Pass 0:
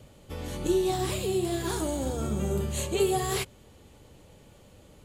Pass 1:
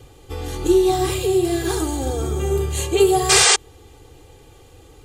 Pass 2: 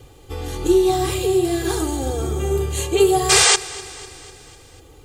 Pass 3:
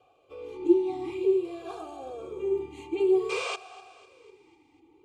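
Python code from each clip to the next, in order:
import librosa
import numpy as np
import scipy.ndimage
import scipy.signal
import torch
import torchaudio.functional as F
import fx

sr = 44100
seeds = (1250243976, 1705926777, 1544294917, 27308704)

y1 = fx.spec_paint(x, sr, seeds[0], shape='noise', start_s=3.29, length_s=0.27, low_hz=370.0, high_hz=9200.0, level_db=-21.0)
y1 = y1 + 0.86 * np.pad(y1, (int(2.5 * sr / 1000.0), 0))[:len(y1)]
y1 = y1 * librosa.db_to_amplitude(5.0)
y2 = fx.quant_dither(y1, sr, seeds[1], bits=12, dither='triangular')
y2 = fx.echo_feedback(y2, sr, ms=249, feedback_pct=58, wet_db=-19.0)
y3 = fx.vowel_sweep(y2, sr, vowels='a-u', hz=0.53)
y3 = y3 * librosa.db_to_amplitude(-1.0)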